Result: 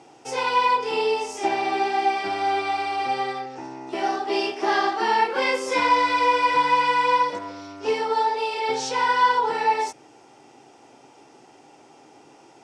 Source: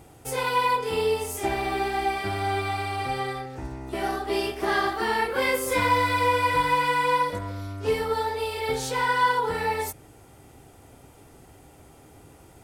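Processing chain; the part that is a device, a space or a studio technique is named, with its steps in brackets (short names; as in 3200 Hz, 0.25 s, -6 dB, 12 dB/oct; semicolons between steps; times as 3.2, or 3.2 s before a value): television speaker (speaker cabinet 170–7300 Hz, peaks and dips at 180 Hz -8 dB, 350 Hz +3 dB, 860 Hz +8 dB, 2700 Hz +5 dB, 5500 Hz +9 dB)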